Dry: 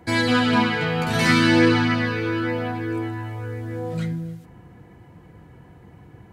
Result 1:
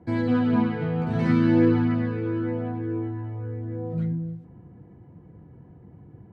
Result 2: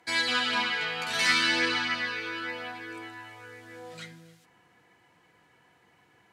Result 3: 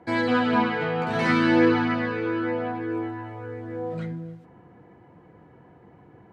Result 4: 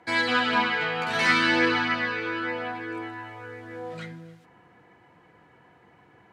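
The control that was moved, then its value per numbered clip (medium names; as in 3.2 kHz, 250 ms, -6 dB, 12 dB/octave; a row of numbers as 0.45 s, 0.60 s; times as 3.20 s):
band-pass filter, frequency: 170 Hz, 4.5 kHz, 600 Hz, 1.7 kHz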